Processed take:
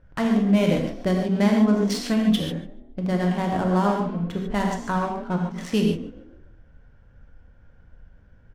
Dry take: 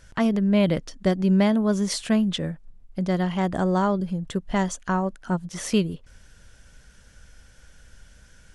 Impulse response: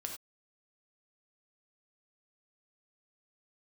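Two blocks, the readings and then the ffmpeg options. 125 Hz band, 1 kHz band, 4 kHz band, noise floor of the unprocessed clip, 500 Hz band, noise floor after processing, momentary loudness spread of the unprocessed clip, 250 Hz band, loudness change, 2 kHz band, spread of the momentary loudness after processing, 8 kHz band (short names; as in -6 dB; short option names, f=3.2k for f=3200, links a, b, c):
+0.5 dB, +1.5 dB, +0.5 dB, -53 dBFS, +0.5 dB, -53 dBFS, 10 LU, +1.0 dB, +1.0 dB, +1.0 dB, 9 LU, -4.5 dB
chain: -filter_complex "[0:a]asplit=5[a][b][c][d][e];[b]adelay=144,afreqshift=40,volume=-15dB[f];[c]adelay=288,afreqshift=80,volume=-23dB[g];[d]adelay=432,afreqshift=120,volume=-30.9dB[h];[e]adelay=576,afreqshift=160,volume=-38.9dB[i];[a][f][g][h][i]amix=inputs=5:normalize=0,adynamicsmooth=sensitivity=7:basefreq=970[j];[1:a]atrim=start_sample=2205,asetrate=30429,aresample=44100[k];[j][k]afir=irnorm=-1:irlink=0"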